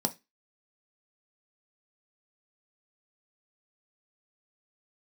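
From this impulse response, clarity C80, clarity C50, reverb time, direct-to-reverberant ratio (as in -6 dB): 28.5 dB, 19.5 dB, 0.20 s, 5.5 dB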